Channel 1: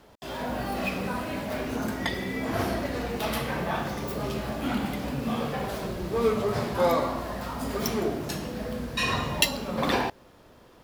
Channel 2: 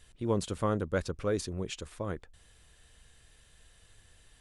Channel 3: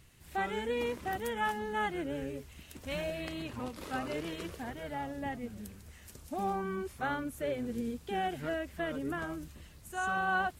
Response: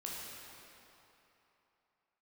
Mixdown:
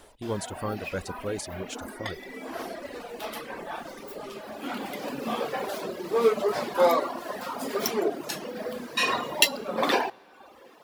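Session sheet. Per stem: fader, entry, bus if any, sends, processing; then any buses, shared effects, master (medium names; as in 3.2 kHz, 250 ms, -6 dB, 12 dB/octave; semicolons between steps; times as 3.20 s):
+3.0 dB, 0.00 s, send -14 dB, Chebyshev high-pass 360 Hz, order 2; auto duck -10 dB, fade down 0.25 s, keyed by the second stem
-1.5 dB, 0.00 s, no send, treble shelf 7.1 kHz +10 dB
-11.0 dB, 0.00 s, no send, compression, threshold -39 dBFS, peak gain reduction 12 dB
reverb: on, RT60 3.2 s, pre-delay 12 ms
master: reverb removal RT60 0.93 s; hum notches 60/120 Hz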